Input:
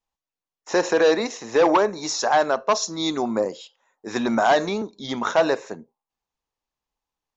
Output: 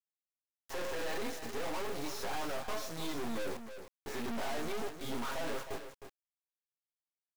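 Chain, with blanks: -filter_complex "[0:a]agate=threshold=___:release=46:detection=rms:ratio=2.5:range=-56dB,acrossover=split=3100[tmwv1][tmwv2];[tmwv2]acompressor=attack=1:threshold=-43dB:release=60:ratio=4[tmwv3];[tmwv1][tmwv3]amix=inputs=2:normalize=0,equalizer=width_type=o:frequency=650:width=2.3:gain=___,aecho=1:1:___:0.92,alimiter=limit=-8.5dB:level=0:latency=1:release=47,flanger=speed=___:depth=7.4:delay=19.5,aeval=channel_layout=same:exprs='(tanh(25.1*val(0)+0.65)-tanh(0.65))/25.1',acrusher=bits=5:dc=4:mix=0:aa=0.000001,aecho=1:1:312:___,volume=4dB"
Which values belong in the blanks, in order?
-33dB, 3, 7.4, 0.42, 0.335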